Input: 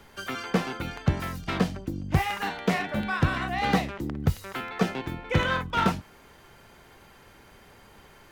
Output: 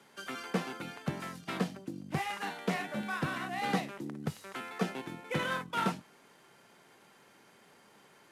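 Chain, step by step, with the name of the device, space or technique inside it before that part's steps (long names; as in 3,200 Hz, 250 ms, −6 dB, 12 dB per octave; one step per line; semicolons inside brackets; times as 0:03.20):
early wireless headset (high-pass filter 150 Hz 24 dB per octave; variable-slope delta modulation 64 kbit/s)
level −7 dB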